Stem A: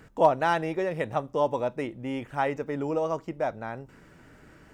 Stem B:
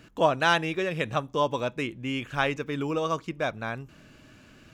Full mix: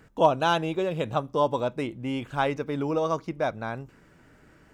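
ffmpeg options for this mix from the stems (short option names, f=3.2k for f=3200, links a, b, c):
-filter_complex "[0:a]volume=-3dB,asplit=2[a][b];[1:a]volume=-4dB[c];[b]apad=whole_len=208858[d];[c][d]sidechaingate=range=-33dB:threshold=-49dB:ratio=16:detection=peak[e];[a][e]amix=inputs=2:normalize=0"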